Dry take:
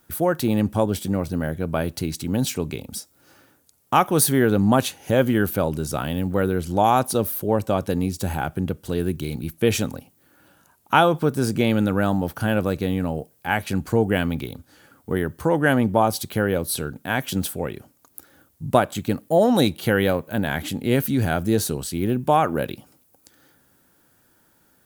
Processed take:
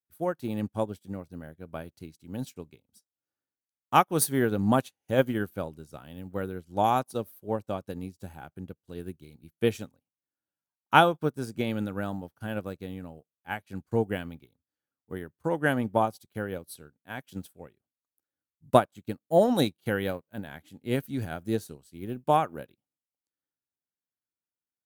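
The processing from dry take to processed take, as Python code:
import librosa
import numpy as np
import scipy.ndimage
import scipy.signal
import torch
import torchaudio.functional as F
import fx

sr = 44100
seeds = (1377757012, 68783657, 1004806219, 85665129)

y = fx.upward_expand(x, sr, threshold_db=-40.0, expansion=2.5)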